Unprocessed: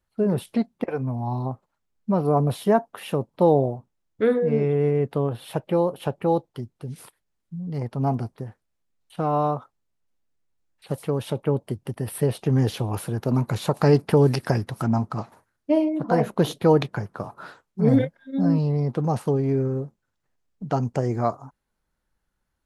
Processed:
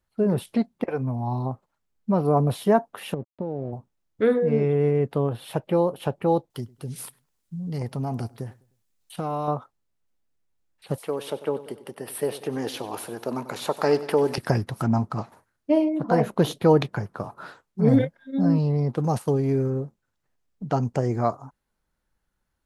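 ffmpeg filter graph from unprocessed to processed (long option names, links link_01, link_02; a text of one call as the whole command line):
ffmpeg -i in.wav -filter_complex "[0:a]asettb=1/sr,asplit=3[link_01][link_02][link_03];[link_01]atrim=end=3.144[link_04];[link_02]atrim=start=3.14:end=3.73,asetpts=PTS-STARTPTS,afade=type=in:duration=0.004:curve=qsin,afade=type=out:start_time=0.586:duration=0.004:curve=qsin,acompressor=threshold=-24dB:ratio=4:attack=3.2:release=140:knee=1:detection=peak,aeval=exprs='sgn(val(0))*max(abs(val(0))-0.00562,0)':channel_layout=same,bandpass=frequency=190:width_type=q:width=0.52[link_05];[link_03]atrim=start=3.726[link_06];[link_04][link_05]acrossfade=duration=0.004:curve1=hsin:curve2=qsin[link_07];[link_07][link_06]acrossfade=duration=0.004:curve1=qsin:curve2=hsin,asettb=1/sr,asplit=3[link_08][link_09][link_10];[link_08]atrim=end=6.504[link_11];[link_09]atrim=start=6.5:end=9.48,asetpts=PTS-STARTPTS,afade=type=in:duration=0.004:curve=qsin,afade=type=out:start_time=2.976:duration=0.004:curve=qsin,highshelf=frequency=3500:gain=11,acompressor=threshold=-24dB:ratio=6:attack=3.2:release=140:knee=1:detection=peak,asplit=2[link_12][link_13];[link_13]adelay=102,lowpass=frequency=2100:poles=1,volume=-23dB,asplit=2[link_14][link_15];[link_15]adelay=102,lowpass=frequency=2100:poles=1,volume=0.39,asplit=2[link_16][link_17];[link_17]adelay=102,lowpass=frequency=2100:poles=1,volume=0.39[link_18];[link_12][link_14][link_16][link_18]amix=inputs=4:normalize=0,atrim=end_sample=131418[link_19];[link_10]atrim=start=9.476[link_20];[link_11][link_19]acrossfade=duration=0.004:curve1=hsin:curve2=qsin[link_21];[link_21][link_20]acrossfade=duration=0.004:curve1=qsin:curve2=hsin,asettb=1/sr,asplit=3[link_22][link_23][link_24];[link_22]atrim=end=10.984[link_25];[link_23]atrim=start=10.98:end=14.38,asetpts=PTS-STARTPTS,afade=type=in:duration=0.004:curve=qsin,afade=type=out:start_time=3.396:duration=0.004:curve=qsin,highpass=370,aecho=1:1:95|190|285|380|475|570:0.168|0.0957|0.0545|0.0311|0.0177|0.0101,atrim=end_sample=149940[link_26];[link_24]atrim=start=14.376[link_27];[link_25][link_26]acrossfade=duration=0.004:curve1=hsin:curve2=qsin[link_28];[link_28][link_27]acrossfade=duration=0.004:curve1=qsin:curve2=hsin,asettb=1/sr,asplit=3[link_29][link_30][link_31];[link_29]atrim=end=18.964[link_32];[link_30]atrim=start=18.96:end=19.7,asetpts=PTS-STARTPTS,afade=type=in:duration=0.004:curve=qsin,afade=type=out:start_time=0.736:duration=0.004:curve=qsin,aemphasis=mode=production:type=cd,agate=range=-6dB:threshold=-29dB:ratio=16:release=100:detection=peak[link_33];[link_31]atrim=start=19.696[link_34];[link_32][link_33]acrossfade=duration=0.004:curve1=hsin:curve2=qsin[link_35];[link_35][link_34]acrossfade=duration=0.004:curve1=qsin:curve2=hsin" out.wav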